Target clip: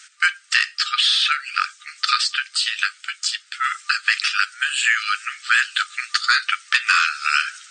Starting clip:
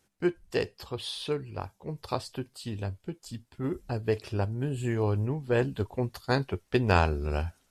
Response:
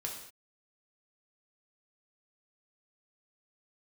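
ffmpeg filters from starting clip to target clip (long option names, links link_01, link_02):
-filter_complex "[0:a]afftfilt=real='re*between(b*sr/4096,1200,9000)':imag='im*between(b*sr/4096,1200,9000)':win_size=4096:overlap=0.75,apsyclip=31.5dB,acrossover=split=2000|6500[link_01][link_02][link_03];[link_01]acompressor=threshold=-17dB:ratio=4[link_04];[link_02]acompressor=threshold=-18dB:ratio=4[link_05];[link_03]acompressor=threshold=-36dB:ratio=4[link_06];[link_04][link_05][link_06]amix=inputs=3:normalize=0,volume=-2dB"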